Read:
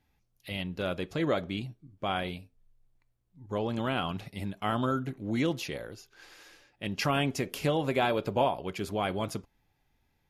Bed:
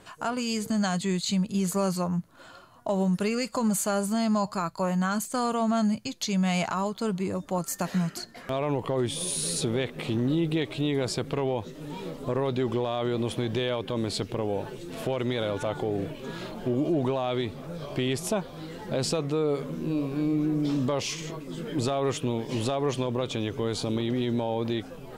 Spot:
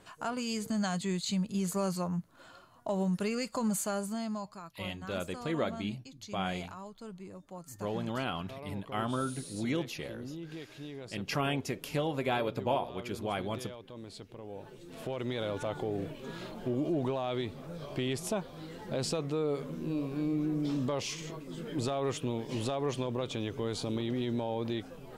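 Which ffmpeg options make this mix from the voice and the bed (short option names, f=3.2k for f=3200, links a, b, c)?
-filter_complex "[0:a]adelay=4300,volume=-4dB[a];[1:a]volume=6dB,afade=t=out:st=3.76:d=0.82:silence=0.266073,afade=t=in:st=14.41:d=1.08:silence=0.266073[b];[a][b]amix=inputs=2:normalize=0"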